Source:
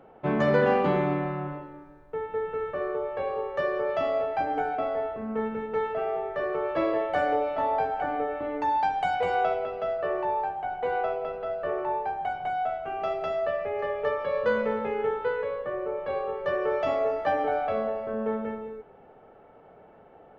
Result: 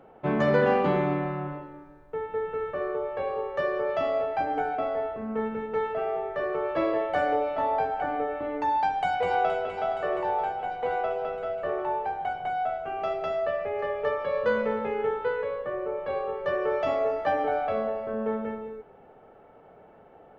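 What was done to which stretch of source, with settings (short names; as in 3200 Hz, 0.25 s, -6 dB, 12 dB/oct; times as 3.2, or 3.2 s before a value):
8.83–9.74 echo throw 0.47 s, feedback 70%, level -9 dB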